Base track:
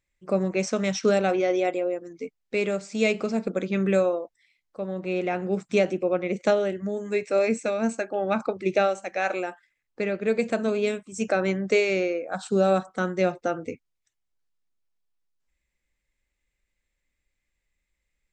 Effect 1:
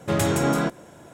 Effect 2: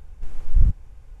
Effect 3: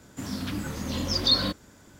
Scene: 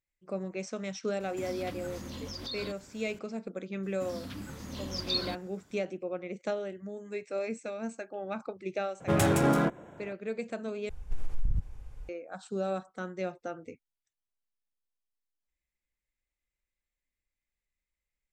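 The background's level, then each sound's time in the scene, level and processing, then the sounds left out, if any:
base track -11.5 dB
1.20 s: add 3 -3 dB + compression 4:1, threshold -36 dBFS
3.83 s: add 3 -9.5 dB
9.00 s: add 1 -2.5 dB + local Wiener filter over 9 samples
10.89 s: replace with 2 -1.5 dB + compression 12:1, threshold -20 dBFS

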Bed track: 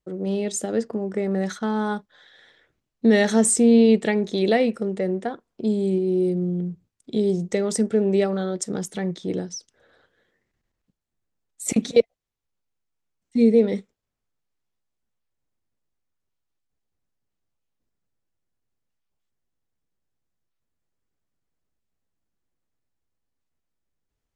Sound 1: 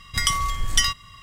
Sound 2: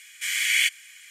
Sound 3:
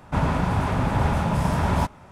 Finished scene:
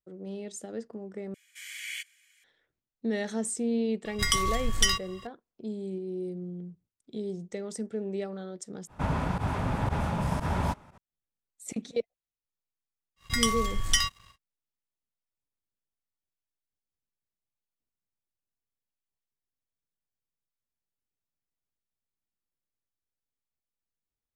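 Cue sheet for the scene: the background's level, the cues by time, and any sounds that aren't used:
bed track -13.5 dB
1.34 s: replace with 2 -16.5 dB + bass shelf 220 Hz -7.5 dB
4.05 s: add 1 -4 dB
8.87 s: replace with 3 -6.5 dB + volume shaper 118 bpm, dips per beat 1, -18 dB, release 68 ms
13.16 s: add 1 -4.5 dB, fades 0.10 s + crossover distortion -49 dBFS

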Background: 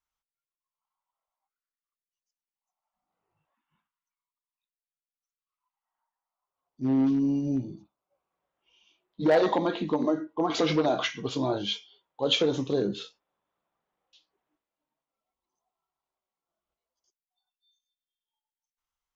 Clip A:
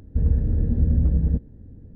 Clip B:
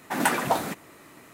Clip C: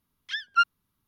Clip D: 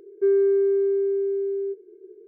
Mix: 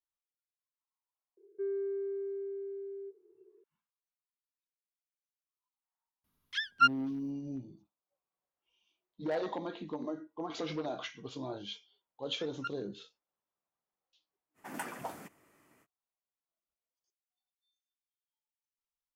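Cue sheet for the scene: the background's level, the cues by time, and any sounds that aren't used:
background -12.5 dB
1.37 s: add D -16 dB
6.24 s: add C -2.5 dB
12.06 s: add C -17 dB + level held to a coarse grid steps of 18 dB
14.54 s: add B -17 dB, fades 0.05 s + peaking EQ 3.9 kHz -10 dB 0.24 oct
not used: A

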